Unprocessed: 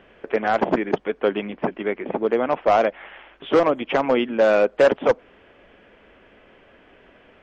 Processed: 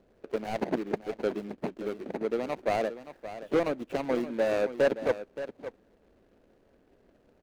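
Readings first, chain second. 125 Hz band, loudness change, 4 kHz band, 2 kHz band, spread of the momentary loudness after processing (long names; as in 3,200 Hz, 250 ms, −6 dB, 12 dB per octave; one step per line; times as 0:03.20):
−6.0 dB, −10.0 dB, −10.5 dB, −11.0 dB, 13 LU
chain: running median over 41 samples
single-tap delay 573 ms −12.5 dB
level −8 dB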